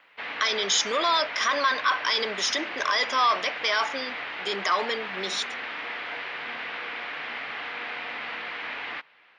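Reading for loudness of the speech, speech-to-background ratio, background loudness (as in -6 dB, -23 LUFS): -25.0 LUFS, 8.0 dB, -33.0 LUFS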